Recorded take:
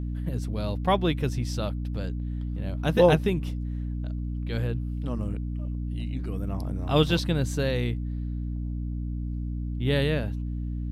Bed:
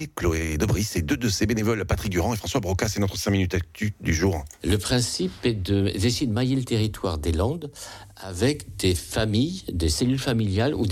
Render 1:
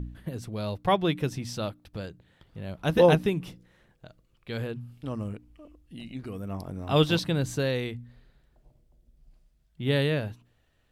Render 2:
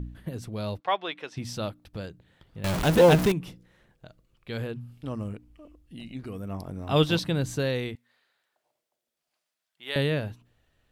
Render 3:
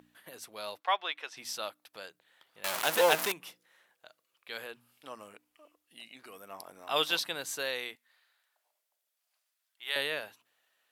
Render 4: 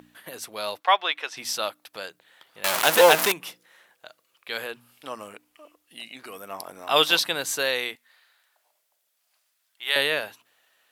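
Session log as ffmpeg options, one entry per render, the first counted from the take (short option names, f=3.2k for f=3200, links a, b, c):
-af "bandreject=f=60:t=h:w=4,bandreject=f=120:t=h:w=4,bandreject=f=180:t=h:w=4,bandreject=f=240:t=h:w=4,bandreject=f=300:t=h:w=4"
-filter_complex "[0:a]asplit=3[a][b][c];[a]afade=t=out:st=0.79:d=0.02[d];[b]highpass=680,lowpass=4.3k,afade=t=in:st=0.79:d=0.02,afade=t=out:st=1.36:d=0.02[e];[c]afade=t=in:st=1.36:d=0.02[f];[d][e][f]amix=inputs=3:normalize=0,asettb=1/sr,asplit=3[g][h][i];[g]atrim=end=2.644[j];[h]atrim=start=2.64:end=3.32,asetpts=PTS-STARTPTS,afade=t=in:d=0.004:c=qsin,afade=t=out:st=0.676:d=0.004:c=qsin,aeval=exprs='val(0)+0.5*0.075*sgn(val(0))':c=same[k];[i]atrim=start=3.316[l];[j][k]acrossfade=d=0.004:c1=hsin:c2=qsin[m];[m][l]acrossfade=d=0.004:c1=qsin:c2=hsin,asettb=1/sr,asplit=3[n][o][p];[n]atrim=end=7.954[q];[o]atrim=start=7.95:end=9.96,asetpts=PTS-STARTPTS,afade=t=in:d=0.004:c=qsin,afade=t=out:st=2.006:d=0.004:c=qsin,highpass=880[r];[p]atrim=start=9.956[s];[q][r]acrossfade=d=0.004:c1=hsin:c2=qsin[t];[t][s]acrossfade=d=0.004:c1=qsin:c2=hsin"
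-af "highpass=820,equalizer=f=13k:t=o:w=0.83:g=7"
-af "volume=9.5dB,alimiter=limit=-1dB:level=0:latency=1"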